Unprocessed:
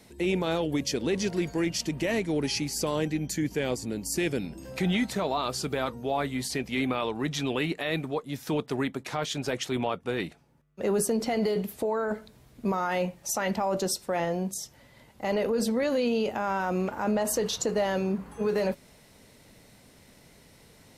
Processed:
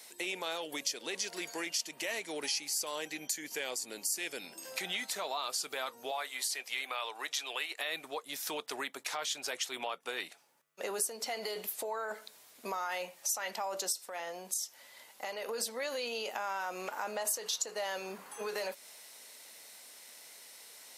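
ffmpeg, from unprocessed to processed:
ffmpeg -i in.wav -filter_complex "[0:a]asettb=1/sr,asplit=3[link_01][link_02][link_03];[link_01]atrim=end=6.114[link_04];[link_02]atrim=start=6.11:end=7.8,asetpts=PTS-STARTPTS,afade=type=in:duration=0.004:curve=qsin,afade=type=out:start_time=1.686:duration=0.004:curve=qsin,highpass=510[link_05];[link_03]atrim=start=7.796[link_06];[link_04][link_05]acrossfade=duration=0.004:curve1=hsin:curve2=qsin[link_07];[link_07][link_06]acrossfade=duration=0.004:curve1=qsin:curve2=hsin,asettb=1/sr,asplit=3[link_08][link_09][link_10];[link_08]atrim=end=13.924[link_11];[link_09]atrim=start=13.92:end=15.49,asetpts=PTS-STARTPTS,afade=type=in:duration=0.004:curve=qsin,afade=type=out:start_time=1.566:duration=0.004:curve=qsin,acompressor=threshold=-30dB:ratio=6:attack=3.2:release=140:knee=1:detection=peak[link_12];[link_10]atrim=start=15.486[link_13];[link_11][link_12]acrossfade=duration=0.004:curve1=hsin:curve2=qsin[link_14];[link_14][link_13]acrossfade=duration=0.004:curve1=qsin:curve2=hsin,highpass=670,highshelf=frequency=3700:gain=10.5,acompressor=threshold=-36dB:ratio=2.5" out.wav

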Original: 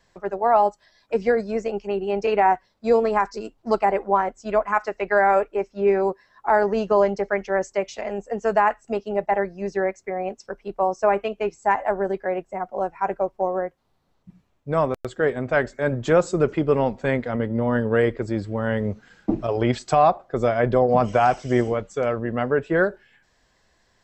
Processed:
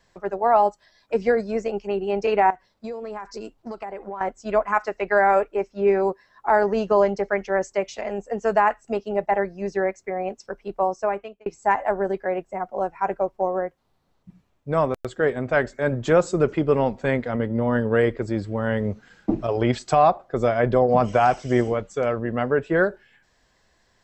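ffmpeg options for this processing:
ffmpeg -i in.wav -filter_complex "[0:a]asettb=1/sr,asplit=3[link_01][link_02][link_03];[link_01]atrim=end=2.504[link_04];[link_02]atrim=start=2.5:end=4.21,asetpts=PTS-STARTPTS,afade=type=in:duration=0.004:curve=qsin,afade=type=out:start_time=1.706:duration=0.004:curve=qsin,acompressor=threshold=-29dB:ratio=10:attack=3.2:release=140:knee=1:detection=peak[link_05];[link_03]atrim=start=4.206[link_06];[link_04][link_05]acrossfade=duration=0.004:curve1=hsin:curve2=qsin[link_07];[link_07][link_06]acrossfade=duration=0.004:curve1=qsin:curve2=hsin,asplit=2[link_08][link_09];[link_08]atrim=end=11.46,asetpts=PTS-STARTPTS,afade=type=out:start_time=10.8:duration=0.66[link_10];[link_09]atrim=start=11.46,asetpts=PTS-STARTPTS,afade=type=in:duration=0.004:curve=hsin[link_11];[link_10][link_11]concat=n=2:v=0:a=1" out.wav

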